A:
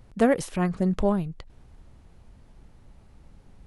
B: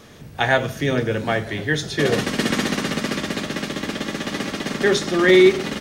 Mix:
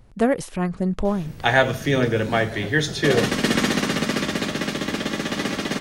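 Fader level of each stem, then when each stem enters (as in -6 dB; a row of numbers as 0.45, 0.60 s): +1.0, +1.0 dB; 0.00, 1.05 s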